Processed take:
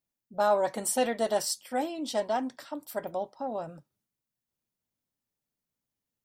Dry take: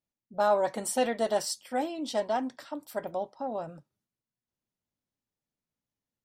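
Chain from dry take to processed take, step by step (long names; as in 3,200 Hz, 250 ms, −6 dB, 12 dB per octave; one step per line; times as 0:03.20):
high-shelf EQ 9,800 Hz +8 dB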